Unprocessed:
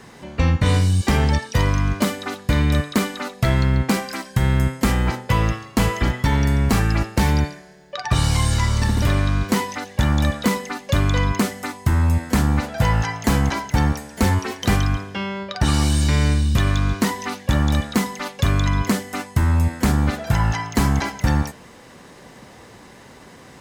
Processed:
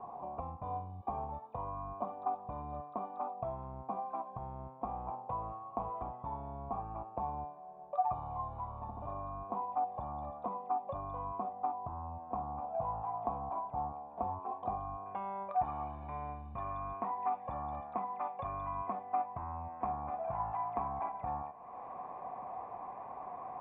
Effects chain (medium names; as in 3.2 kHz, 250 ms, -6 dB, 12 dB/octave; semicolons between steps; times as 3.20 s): peaking EQ 2 kHz -12 dB 0.87 oct, from 15.06 s +5 dB; compression 2.5:1, threshold -37 dBFS, peak gain reduction 16 dB; cascade formant filter a; trim +13 dB